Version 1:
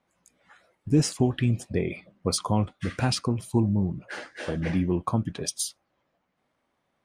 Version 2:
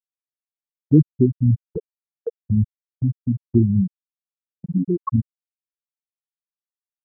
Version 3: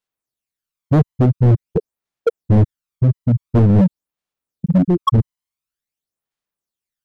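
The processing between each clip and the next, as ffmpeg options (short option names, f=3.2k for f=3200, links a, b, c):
-af "afftfilt=real='re*gte(hypot(re,im),0.501)':imag='im*gte(hypot(re,im),0.501)':win_size=1024:overlap=0.75,agate=range=-21dB:threshold=-44dB:ratio=16:detection=peak,volume=8dB"
-af "aphaser=in_gain=1:out_gain=1:delay=1:decay=0.56:speed=0.47:type=sinusoidal,volume=15dB,asoftclip=hard,volume=-15dB,volume=6dB"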